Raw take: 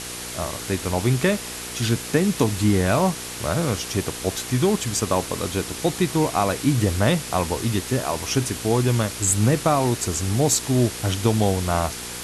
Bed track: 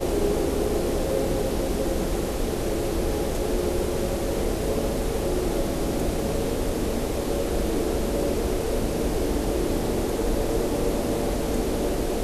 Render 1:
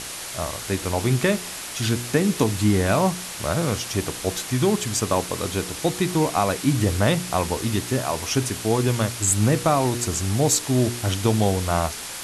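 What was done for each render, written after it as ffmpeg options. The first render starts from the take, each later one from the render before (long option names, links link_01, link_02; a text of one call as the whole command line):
ffmpeg -i in.wav -af "bandreject=frequency=60:width_type=h:width=4,bandreject=frequency=120:width_type=h:width=4,bandreject=frequency=180:width_type=h:width=4,bandreject=frequency=240:width_type=h:width=4,bandreject=frequency=300:width_type=h:width=4,bandreject=frequency=360:width_type=h:width=4,bandreject=frequency=420:width_type=h:width=4,bandreject=frequency=480:width_type=h:width=4" out.wav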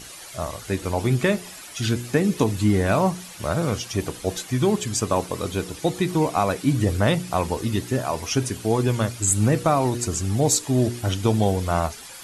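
ffmpeg -i in.wav -af "afftdn=noise_reduction=11:noise_floor=-34" out.wav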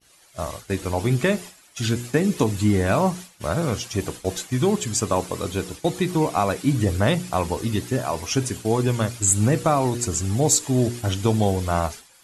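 ffmpeg -i in.wav -af "adynamicequalizer=threshold=0.00501:dfrequency=7300:dqfactor=5.3:tfrequency=7300:tqfactor=5.3:attack=5:release=100:ratio=0.375:range=2:mode=boostabove:tftype=bell,agate=range=-33dB:threshold=-30dB:ratio=3:detection=peak" out.wav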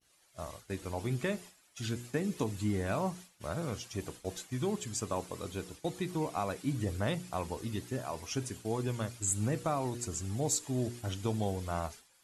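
ffmpeg -i in.wav -af "volume=-13dB" out.wav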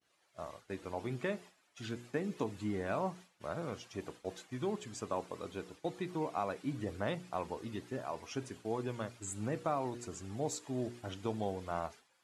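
ffmpeg -i in.wav -af "highpass=frequency=290:poles=1,aemphasis=mode=reproduction:type=75kf" out.wav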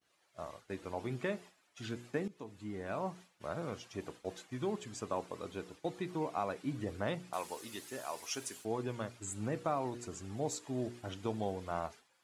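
ffmpeg -i in.wav -filter_complex "[0:a]asettb=1/sr,asplit=3[link_01][link_02][link_03];[link_01]atrim=end=7.334[link_04];[link_02]atrim=start=7.33:end=8.65,asetpts=PTS-STARTPTS,afade=type=in:duration=0.004:curve=qsin,afade=type=out:start_time=1.316:duration=0.004:curve=qsin,aemphasis=mode=production:type=riaa[link_05];[link_03]atrim=start=8.646[link_06];[link_04][link_05]acrossfade=duration=0.004:curve1=hsin:curve2=qsin[link_07];[link_07][link_06]acrossfade=duration=0.004:curve1=qsin:curve2=hsin,asplit=2[link_08][link_09];[link_08]atrim=end=2.28,asetpts=PTS-STARTPTS,afade=type=out:start_time=2.276:duration=0.004:curve=hsin:silence=0.158489[link_10];[link_09]atrim=start=2.28,asetpts=PTS-STARTPTS,afade=type=in:duration=1.04:silence=0.158489[link_11];[link_10][link_11]concat=n=2:v=0:a=1" out.wav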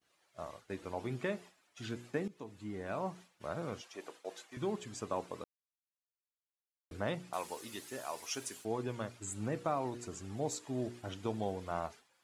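ffmpeg -i in.wav -filter_complex "[0:a]asettb=1/sr,asplit=3[link_01][link_02][link_03];[link_01]atrim=end=3.814[link_04];[link_02]atrim=start=3.81:end=4.57,asetpts=PTS-STARTPTS,afade=type=in:duration=0.004:curve=qsin,afade=type=out:start_time=0.756:duration=0.004:curve=qsin,highpass=440[link_05];[link_03]atrim=start=4.566[link_06];[link_04][link_05]acrossfade=duration=0.004:curve1=hsin:curve2=qsin[link_07];[link_07][link_06]acrossfade=duration=0.004:curve1=qsin:curve2=hsin,asplit=3[link_08][link_09][link_10];[link_08]atrim=end=5.44,asetpts=PTS-STARTPTS,afade=type=out:start_time=5.436:duration=0.004:curve=hsin[link_11];[link_09]atrim=start=5.44:end=6.91,asetpts=PTS-STARTPTS,volume=0[link_12];[link_10]atrim=start=6.91,asetpts=PTS-STARTPTS,afade=type=in:duration=0.004:curve=hsin[link_13];[link_11][link_12][link_13]concat=n=3:v=0:a=1" out.wav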